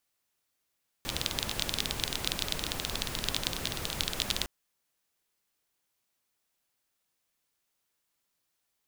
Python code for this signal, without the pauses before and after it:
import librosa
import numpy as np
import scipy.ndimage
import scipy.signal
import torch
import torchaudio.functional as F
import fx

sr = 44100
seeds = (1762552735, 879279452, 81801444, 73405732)

y = fx.rain(sr, seeds[0], length_s=3.41, drops_per_s=20.0, hz=3600.0, bed_db=-0.5)